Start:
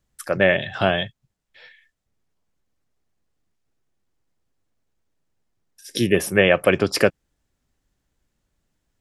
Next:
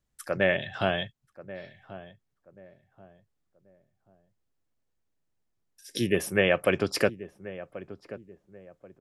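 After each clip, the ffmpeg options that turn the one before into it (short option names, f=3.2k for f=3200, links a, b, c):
-filter_complex "[0:a]asplit=2[a][b];[b]adelay=1084,lowpass=f=1k:p=1,volume=-14.5dB,asplit=2[c][d];[d]adelay=1084,lowpass=f=1k:p=1,volume=0.35,asplit=2[e][f];[f]adelay=1084,lowpass=f=1k:p=1,volume=0.35[g];[a][c][e][g]amix=inputs=4:normalize=0,volume=-7dB"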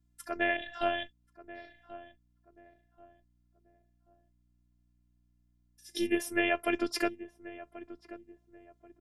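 -af "afftfilt=real='hypot(re,im)*cos(PI*b)':imag='0':win_size=512:overlap=0.75,aeval=exprs='val(0)+0.000355*(sin(2*PI*60*n/s)+sin(2*PI*2*60*n/s)/2+sin(2*PI*3*60*n/s)/3+sin(2*PI*4*60*n/s)/4+sin(2*PI*5*60*n/s)/5)':c=same,volume=-1dB"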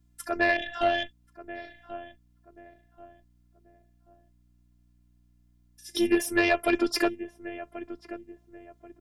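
-af "aeval=exprs='(tanh(7.94*val(0)+0.35)-tanh(0.35))/7.94':c=same,volume=8.5dB"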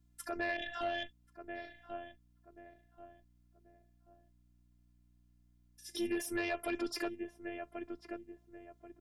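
-af "alimiter=limit=-22dB:level=0:latency=1:release=73,volume=-5dB"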